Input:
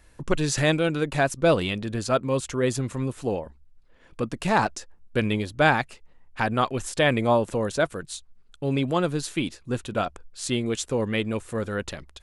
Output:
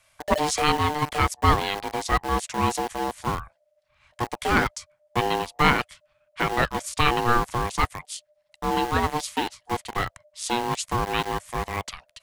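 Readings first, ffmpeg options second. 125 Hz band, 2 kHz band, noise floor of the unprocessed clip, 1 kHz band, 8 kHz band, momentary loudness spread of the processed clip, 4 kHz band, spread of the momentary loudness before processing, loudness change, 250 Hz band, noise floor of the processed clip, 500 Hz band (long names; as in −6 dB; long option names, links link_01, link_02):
−2.0 dB, +1.0 dB, −55 dBFS, +5.0 dB, +1.0 dB, 11 LU, +2.5 dB, 11 LU, +0.5 dB, −3.5 dB, −71 dBFS, −4.5 dB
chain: -filter_complex "[0:a]aeval=exprs='val(0)*sin(2*PI*600*n/s)':channel_layout=same,acrossover=split=150|1000|3800[link_01][link_02][link_03][link_04];[link_02]aeval=exprs='val(0)*gte(abs(val(0)),0.0266)':channel_layout=same[link_05];[link_01][link_05][link_03][link_04]amix=inputs=4:normalize=0,volume=3.5dB"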